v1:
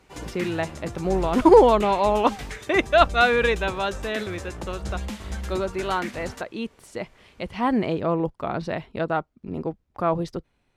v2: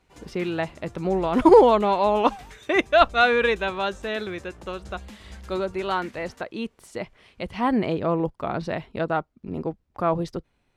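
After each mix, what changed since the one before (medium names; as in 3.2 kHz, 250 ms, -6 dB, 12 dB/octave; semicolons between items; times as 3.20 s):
background -10.5 dB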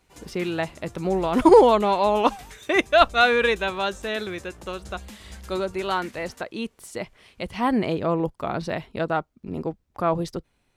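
master: remove low-pass 3.8 kHz 6 dB/octave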